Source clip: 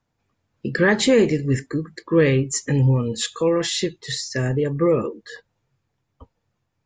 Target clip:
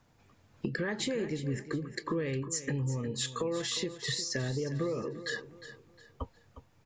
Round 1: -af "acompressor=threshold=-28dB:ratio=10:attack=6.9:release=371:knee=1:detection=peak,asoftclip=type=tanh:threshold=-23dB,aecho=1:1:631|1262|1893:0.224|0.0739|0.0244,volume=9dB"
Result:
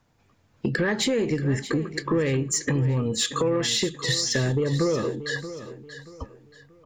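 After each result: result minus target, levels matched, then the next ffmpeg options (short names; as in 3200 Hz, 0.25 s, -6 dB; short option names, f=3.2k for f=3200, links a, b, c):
echo 0.273 s late; compressor: peak gain reduction -10.5 dB
-af "acompressor=threshold=-28dB:ratio=10:attack=6.9:release=371:knee=1:detection=peak,asoftclip=type=tanh:threshold=-23dB,aecho=1:1:358|716|1074:0.224|0.0739|0.0244,volume=9dB"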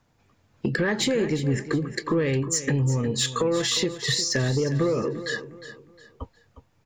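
compressor: peak gain reduction -10.5 dB
-af "acompressor=threshold=-39.5dB:ratio=10:attack=6.9:release=371:knee=1:detection=peak,asoftclip=type=tanh:threshold=-23dB,aecho=1:1:358|716|1074:0.224|0.0739|0.0244,volume=9dB"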